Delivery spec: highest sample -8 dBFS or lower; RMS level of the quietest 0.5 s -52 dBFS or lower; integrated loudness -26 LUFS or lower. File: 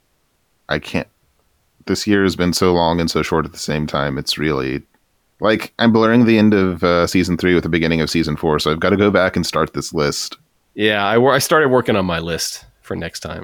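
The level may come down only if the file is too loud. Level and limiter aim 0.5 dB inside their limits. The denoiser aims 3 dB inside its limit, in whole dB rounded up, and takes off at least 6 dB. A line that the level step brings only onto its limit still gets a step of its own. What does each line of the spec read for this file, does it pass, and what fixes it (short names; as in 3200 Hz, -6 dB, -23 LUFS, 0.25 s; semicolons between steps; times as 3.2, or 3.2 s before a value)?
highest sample -2.5 dBFS: fail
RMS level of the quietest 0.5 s -63 dBFS: OK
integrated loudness -16.5 LUFS: fail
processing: gain -10 dB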